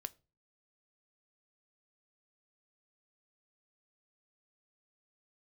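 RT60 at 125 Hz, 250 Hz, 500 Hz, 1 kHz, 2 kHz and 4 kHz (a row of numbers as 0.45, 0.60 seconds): 0.50, 0.45, 0.35, 0.30, 0.25, 0.25 seconds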